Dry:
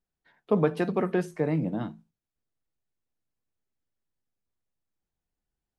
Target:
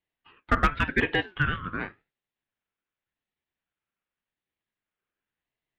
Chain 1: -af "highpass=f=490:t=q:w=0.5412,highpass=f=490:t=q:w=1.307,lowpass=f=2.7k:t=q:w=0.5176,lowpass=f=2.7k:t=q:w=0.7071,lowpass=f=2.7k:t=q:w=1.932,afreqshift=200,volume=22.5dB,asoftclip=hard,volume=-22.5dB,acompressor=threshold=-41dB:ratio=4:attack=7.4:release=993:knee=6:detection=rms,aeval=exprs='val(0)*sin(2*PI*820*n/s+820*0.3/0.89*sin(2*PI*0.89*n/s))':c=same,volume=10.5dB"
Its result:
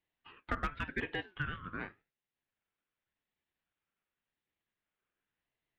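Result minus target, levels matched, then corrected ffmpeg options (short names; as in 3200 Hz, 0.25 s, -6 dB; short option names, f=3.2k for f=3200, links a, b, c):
compressor: peak gain reduction +14 dB
-af "highpass=f=490:t=q:w=0.5412,highpass=f=490:t=q:w=1.307,lowpass=f=2.7k:t=q:w=0.5176,lowpass=f=2.7k:t=q:w=0.7071,lowpass=f=2.7k:t=q:w=1.932,afreqshift=200,volume=22.5dB,asoftclip=hard,volume=-22.5dB,aeval=exprs='val(0)*sin(2*PI*820*n/s+820*0.3/0.89*sin(2*PI*0.89*n/s))':c=same,volume=10.5dB"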